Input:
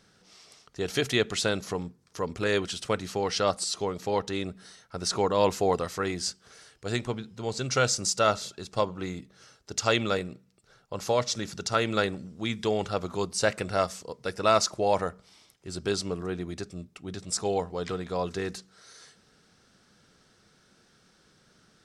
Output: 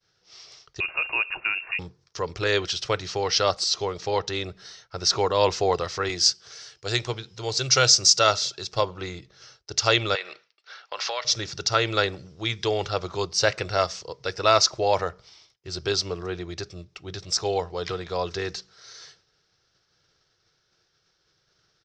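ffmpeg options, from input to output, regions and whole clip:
ffmpeg -i in.wav -filter_complex "[0:a]asettb=1/sr,asplit=3[link_01][link_02][link_03];[link_01]atrim=end=0.804[link_04];[link_02]atrim=start=0.8:end=1.79,asetpts=PTS-STARTPTS,afade=type=in:duration=0.004:curve=qsin,afade=type=out:start_time=0.986:duration=0.004:curve=qsin,acompressor=threshold=-33dB:ratio=1.5:attack=3.2:release=140:knee=1:detection=peak,lowpass=frequency=2500:width_type=q:width=0.5098,lowpass=frequency=2500:width_type=q:width=0.6013,lowpass=frequency=2500:width_type=q:width=0.9,lowpass=frequency=2500:width_type=q:width=2.563,afreqshift=-2900[link_05];[link_03]atrim=start=1.786[link_06];[link_04][link_05]acrossfade=duration=0.004:curve1=hsin:curve2=qsin[link_07];[link_07][link_06]acrossfade=duration=0.004:curve1=qsin:curve2=hsin,asettb=1/sr,asplit=3[link_08][link_09][link_10];[link_08]atrim=end=6.094[link_11];[link_09]atrim=start=6.09:end=8.73,asetpts=PTS-STARTPTS,afade=type=in:duration=0.004:curve=qsin,afade=type=out:start_time=2.636:duration=0.004:curve=qsin,highpass=79,aemphasis=mode=production:type=cd[link_12];[link_10]atrim=start=8.726[link_13];[link_11][link_12]acrossfade=duration=0.004:curve1=hsin:curve2=qsin[link_14];[link_14][link_13]acrossfade=duration=0.004:curve1=qsin:curve2=hsin,asettb=1/sr,asplit=3[link_15][link_16][link_17];[link_15]atrim=end=10.154[link_18];[link_16]atrim=start=10.15:end=11.25,asetpts=PTS-STARTPTS,afade=type=in:duration=0.004:curve=qsin,afade=type=out:start_time=1.096:duration=0.004:curve=qsin,equalizer=frequency=2200:width=0.34:gain=14.5,acompressor=threshold=-30dB:ratio=4:attack=3.2:release=140:knee=1:detection=peak,highpass=540,lowpass=5500[link_19];[link_17]atrim=start=11.246[link_20];[link_18][link_19]acrossfade=duration=0.004:curve1=hsin:curve2=qsin[link_21];[link_21][link_20]acrossfade=duration=0.004:curve1=qsin:curve2=hsin,agate=range=-33dB:threshold=-53dB:ratio=3:detection=peak,firequalizer=gain_entry='entry(130,0);entry(230,-18);entry(330,-2);entry(5500,6);entry(10000,-27)':delay=0.05:min_phase=1,volume=4dB" out.wav

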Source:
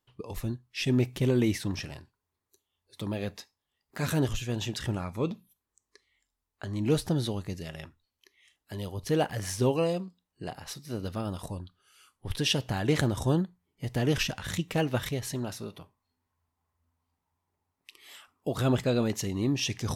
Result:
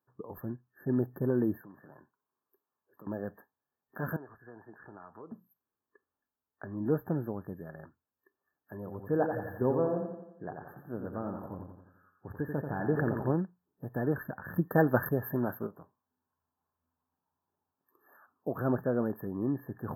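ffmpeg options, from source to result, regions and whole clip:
ffmpeg -i in.wav -filter_complex "[0:a]asettb=1/sr,asplit=3[link_01][link_02][link_03];[link_01]atrim=end=1.614[link_04];[link_02]atrim=start=1.61:end=3.07,asetpts=PTS-STARTPTS,afade=type=in:duration=0.004:curve=qsin,afade=type=out:start_time=1.456:duration=0.004:curve=qsin,equalizer=frequency=1100:width_type=o:width=0.48:gain=5,acompressor=threshold=-42dB:ratio=6:attack=3.2:release=140:knee=1:detection=peak,highpass=160[link_05];[link_03]atrim=start=3.066[link_06];[link_04][link_05]acrossfade=duration=0.004:curve1=hsin:curve2=qsin[link_07];[link_07][link_06]acrossfade=duration=0.004:curve1=qsin:curve2=hsin,asettb=1/sr,asplit=3[link_08][link_09][link_10];[link_08]atrim=end=4.164[link_11];[link_09]atrim=start=4.16:end=5.32,asetpts=PTS-STARTPTS,afade=type=in:duration=0.004:curve=qsin,afade=type=out:start_time=1.156:duration=0.004:curve=qsin,acrossover=split=380 4900:gain=0.224 1 0.0891[link_12][link_13][link_14];[link_12][link_13][link_14]amix=inputs=3:normalize=0,acompressor=threshold=-41dB:ratio=4:attack=3.2:release=140:knee=1:detection=peak,bandreject=frequency=550:width=6.2[link_15];[link_10]atrim=start=5.316[link_16];[link_11][link_15]acrossfade=duration=0.004:curve1=hsin:curve2=qsin[link_17];[link_17][link_16]acrossfade=duration=0.004:curve1=qsin:curve2=hsin,asettb=1/sr,asplit=3[link_18][link_19][link_20];[link_18]atrim=end=8.774[link_21];[link_19]atrim=start=8.77:end=13.34,asetpts=PTS-STARTPTS,afade=type=in:duration=0.004:curve=qsin,afade=type=out:start_time=4.566:duration=0.004:curve=qsin,highshelf=frequency=6800:gain=-9,aecho=1:1:87|174|261|348|435|522:0.501|0.261|0.136|0.0705|0.0366|0.0191,atrim=end_sample=201537[link_22];[link_20]atrim=start=13.336[link_23];[link_21][link_22]acrossfade=duration=0.004:curve1=hsin:curve2=qsin[link_24];[link_24][link_23]acrossfade=duration=0.004:curve1=qsin:curve2=hsin,asettb=1/sr,asplit=3[link_25][link_26][link_27];[link_25]atrim=end=14.554[link_28];[link_26]atrim=start=14.55:end=15.67,asetpts=PTS-STARTPTS,afade=type=in:duration=0.004:curve=qsin,afade=type=out:start_time=1.116:duration=0.004:curve=qsin,agate=range=-33dB:threshold=-41dB:ratio=3:release=100:detection=peak,equalizer=frequency=7100:width=0.65:gain=12.5,acontrast=64[link_29];[link_27]atrim=start=15.666[link_30];[link_28][link_29]acrossfade=duration=0.004:curve1=hsin:curve2=qsin[link_31];[link_31][link_30]acrossfade=duration=0.004:curve1=qsin:curve2=hsin,afftfilt=real='re*(1-between(b*sr/4096,1800,12000))':imag='im*(1-between(b*sr/4096,1800,12000))':win_size=4096:overlap=0.75,highpass=150,volume=-2.5dB" out.wav

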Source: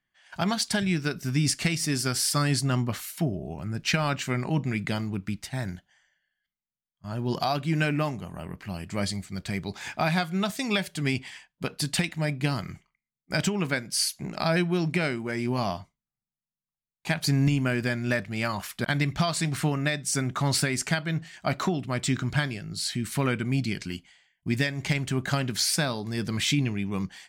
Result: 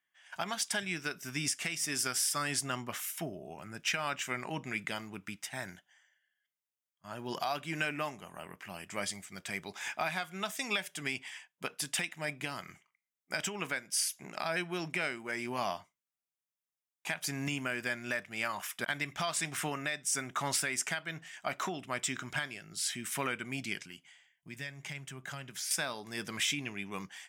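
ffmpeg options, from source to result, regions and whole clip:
ffmpeg -i in.wav -filter_complex "[0:a]asettb=1/sr,asplit=3[link_01][link_02][link_03];[link_01]atrim=end=23.814[link_04];[link_02]atrim=start=23.81:end=25.71,asetpts=PTS-STARTPTS,afade=type=in:duration=0.004:curve=qsin,afade=type=out:start_time=1.896:duration=0.004:curve=qsin,equalizer=frequency=140:width_type=o:width=0.45:gain=11.5,acompressor=threshold=-49dB:ratio=1.5:attack=3.2:release=140:knee=1:detection=peak[link_05];[link_03]atrim=start=25.706[link_06];[link_04][link_05]acrossfade=duration=0.004:curve1=hsin:curve2=qsin[link_07];[link_07][link_06]acrossfade=duration=0.004:curve1=qsin:curve2=hsin,highpass=frequency=1000:poles=1,equalizer=frequency=4300:width_type=o:width=0.22:gain=-14,alimiter=limit=-20dB:level=0:latency=1:release=350" out.wav

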